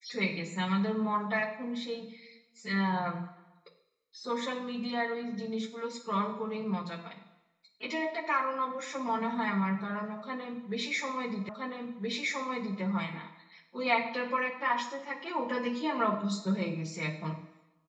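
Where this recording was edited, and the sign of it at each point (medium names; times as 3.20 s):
11.49 s: repeat of the last 1.32 s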